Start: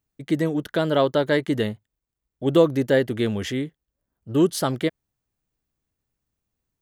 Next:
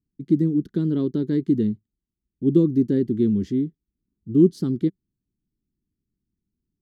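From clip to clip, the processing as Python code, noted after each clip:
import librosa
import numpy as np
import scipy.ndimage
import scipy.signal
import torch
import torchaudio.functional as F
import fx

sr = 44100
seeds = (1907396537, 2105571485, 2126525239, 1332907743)

y = fx.curve_eq(x, sr, hz=(130.0, 190.0, 380.0, 610.0, 1100.0, 2900.0, 4500.0, 9700.0), db=(0, 8, 2, -28, -21, -22, -12, -21))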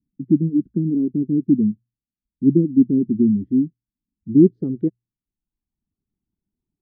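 y = fx.filter_sweep_lowpass(x, sr, from_hz=260.0, to_hz=860.0, start_s=4.38, end_s=4.95, q=2.2)
y = fx.dereverb_blind(y, sr, rt60_s=0.87)
y = fx.hum_notches(y, sr, base_hz=60, count=2)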